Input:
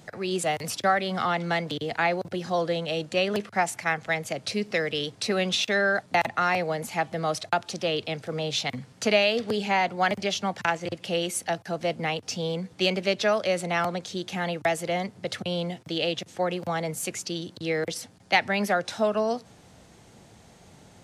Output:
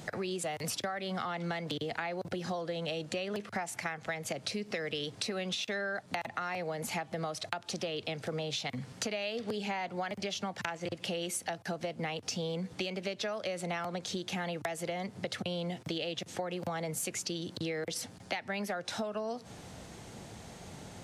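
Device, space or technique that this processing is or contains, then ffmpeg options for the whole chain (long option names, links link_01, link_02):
serial compression, peaks first: -af "acompressor=threshold=-31dB:ratio=6,acompressor=threshold=-40dB:ratio=2.5,volume=4.5dB"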